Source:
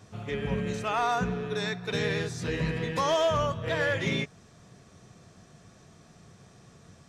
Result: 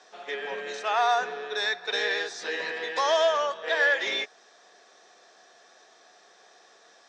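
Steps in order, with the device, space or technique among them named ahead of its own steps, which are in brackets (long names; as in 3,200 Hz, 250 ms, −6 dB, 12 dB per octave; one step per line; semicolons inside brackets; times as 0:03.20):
phone speaker on a table (loudspeaker in its box 400–7,300 Hz, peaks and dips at 770 Hz +7 dB, 1,700 Hz +8 dB, 3,700 Hz +7 dB, 5,300 Hz +5 dB)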